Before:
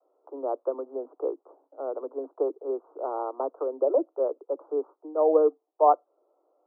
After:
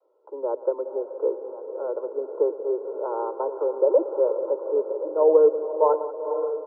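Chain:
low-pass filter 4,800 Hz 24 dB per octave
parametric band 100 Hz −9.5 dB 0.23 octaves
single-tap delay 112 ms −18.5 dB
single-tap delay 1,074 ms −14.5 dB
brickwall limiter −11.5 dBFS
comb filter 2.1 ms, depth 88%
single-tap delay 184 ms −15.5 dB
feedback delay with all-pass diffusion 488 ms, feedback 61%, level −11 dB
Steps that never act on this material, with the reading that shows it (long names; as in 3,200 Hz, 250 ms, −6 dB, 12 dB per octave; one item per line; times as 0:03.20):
low-pass filter 4,800 Hz: nothing at its input above 1,400 Hz
parametric band 100 Hz: nothing at its input below 240 Hz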